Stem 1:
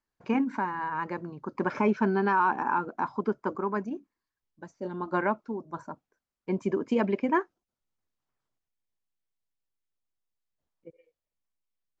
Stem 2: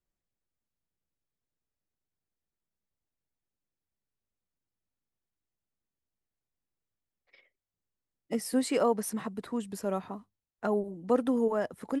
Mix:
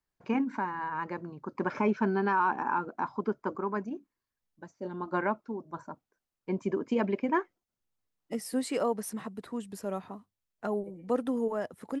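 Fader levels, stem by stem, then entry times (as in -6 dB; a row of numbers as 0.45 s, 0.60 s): -2.5 dB, -3.0 dB; 0.00 s, 0.00 s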